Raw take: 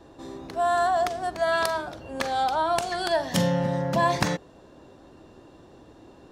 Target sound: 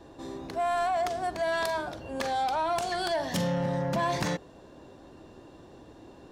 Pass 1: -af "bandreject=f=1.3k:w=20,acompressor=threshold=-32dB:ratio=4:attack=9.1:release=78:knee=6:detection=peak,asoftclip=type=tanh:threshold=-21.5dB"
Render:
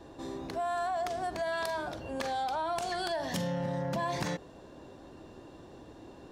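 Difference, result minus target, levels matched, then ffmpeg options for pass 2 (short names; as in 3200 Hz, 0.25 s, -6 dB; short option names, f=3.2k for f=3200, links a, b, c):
compressor: peak gain reduction +6.5 dB
-af "bandreject=f=1.3k:w=20,acompressor=threshold=-23dB:ratio=4:attack=9.1:release=78:knee=6:detection=peak,asoftclip=type=tanh:threshold=-21.5dB"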